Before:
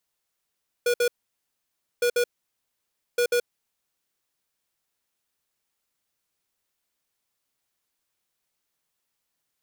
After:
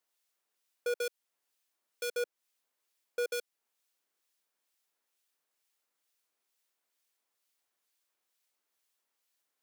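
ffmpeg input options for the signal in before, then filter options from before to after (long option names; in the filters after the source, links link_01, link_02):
-f lavfi -i "aevalsrc='0.0841*(2*lt(mod(483*t,1),0.5)-1)*clip(min(mod(mod(t,1.16),0.14),0.08-mod(mod(t,1.16),0.14))/0.005,0,1)*lt(mod(t,1.16),0.28)':duration=3.48:sample_rate=44100"
-filter_complex "[0:a]highpass=310,alimiter=limit=-22dB:level=0:latency=1:release=260,acrossover=split=1900[link_01][link_02];[link_01]aeval=exprs='val(0)*(1-0.5/2+0.5/2*cos(2*PI*2.2*n/s))':channel_layout=same[link_03];[link_02]aeval=exprs='val(0)*(1-0.5/2-0.5/2*cos(2*PI*2.2*n/s))':channel_layout=same[link_04];[link_03][link_04]amix=inputs=2:normalize=0"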